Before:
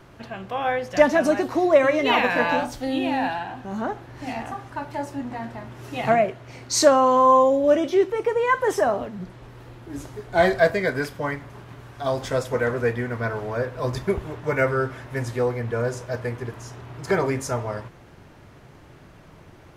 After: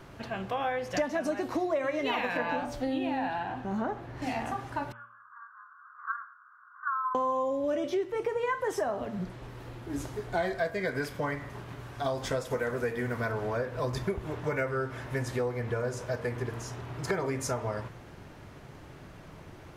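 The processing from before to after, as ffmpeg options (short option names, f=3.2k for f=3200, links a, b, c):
-filter_complex "[0:a]asettb=1/sr,asplit=3[a][b][c];[a]atrim=end=2.374[d];[b]atrim=start=2.37:end=4.22,asetpts=PTS-STARTPTS,afade=t=in:d=0.004:c=qsin,afade=t=out:st=1.846:d=0.004:c=qsin,highshelf=f=3.6k:g=-8.5[e];[c]atrim=start=4.216[f];[d][e]acrossfade=d=0.004:c1=hsin:c2=qsin[g];[g][f]acrossfade=d=0.004:c1=qsin:c2=hsin,asettb=1/sr,asplit=3[h][i][j];[h]atrim=end=4.924[k];[i]atrim=start=4.92:end=7.15,asetpts=PTS-STARTPTS,afade=t=in:d=0.004:c=qsin,afade=t=out:st=2.226:d=0.004:c=qsin,asuperpass=centerf=1300:order=12:qfactor=2.4[l];[j]atrim=start=7.146[m];[k][l]acrossfade=d=0.004:c1=hsin:c2=qsin[n];[n][m]acrossfade=d=0.004:c1=qsin:c2=hsin,asettb=1/sr,asplit=3[o][p][q];[o]atrim=end=12.504[r];[p]atrim=start=12.5:end=13.32,asetpts=PTS-STARTPTS,afade=t=in:d=0.004:c=qsin,afade=t=out:st=0.816:d=0.004:c=qsin,highshelf=f=7.5k:g=9.5[s];[q]atrim=start=13.316[t];[r][s]acrossfade=d=0.004:c1=hsin:c2=qsin[u];[u][t]acrossfade=d=0.004:c1=qsin:c2=hsin,bandreject=f=116.2:t=h:w=4,bandreject=f=232.4:t=h:w=4,bandreject=f=348.6:t=h:w=4,bandreject=f=464.8:t=h:w=4,bandreject=f=581:t=h:w=4,bandreject=f=697.2:t=h:w=4,bandreject=f=813.4:t=h:w=4,bandreject=f=929.6:t=h:w=4,bandreject=f=1.0458k:t=h:w=4,bandreject=f=1.162k:t=h:w=4,bandreject=f=1.2782k:t=h:w=4,bandreject=f=1.3944k:t=h:w=4,bandreject=f=1.5106k:t=h:w=4,bandreject=f=1.6268k:t=h:w=4,bandreject=f=1.743k:t=h:w=4,bandreject=f=1.8592k:t=h:w=4,bandreject=f=1.9754k:t=h:w=4,bandreject=f=2.0916k:t=h:w=4,bandreject=f=2.2078k:t=h:w=4,bandreject=f=2.324k:t=h:w=4,bandreject=f=2.4402k:t=h:w=4,bandreject=f=2.5564k:t=h:w=4,bandreject=f=2.6726k:t=h:w=4,bandreject=f=2.7888k:t=h:w=4,bandreject=f=2.905k:t=h:w=4,bandreject=f=3.0212k:t=h:w=4,bandreject=f=3.1374k:t=h:w=4,bandreject=f=3.2536k:t=h:w=4,bandreject=f=3.3698k:t=h:w=4,bandreject=f=3.486k:t=h:w=4,acompressor=threshold=-28dB:ratio=5"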